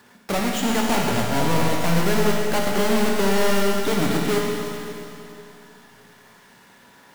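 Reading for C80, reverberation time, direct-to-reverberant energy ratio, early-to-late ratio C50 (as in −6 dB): 1.0 dB, 2.9 s, −1.5 dB, 0.0 dB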